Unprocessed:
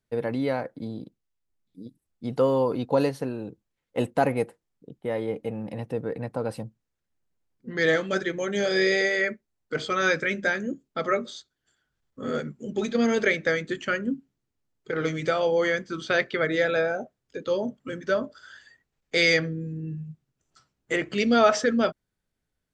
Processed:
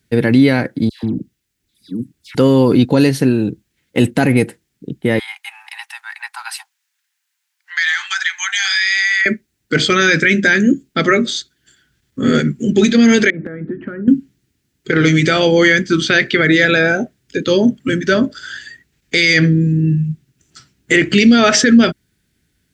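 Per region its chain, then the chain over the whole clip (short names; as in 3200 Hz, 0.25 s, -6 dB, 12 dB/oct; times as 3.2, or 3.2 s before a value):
0.89–2.35 hard clip -32 dBFS + dispersion lows, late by 0.144 s, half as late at 1400 Hz
5.19–9.26 steep high-pass 810 Hz 96 dB/oct + compressor, threshold -31 dBFS
13.3–14.08 LPF 1200 Hz 24 dB/oct + compressor 16:1, threshold -38 dBFS
whole clip: HPF 52 Hz; band shelf 770 Hz -11.5 dB; maximiser +20.5 dB; gain -1 dB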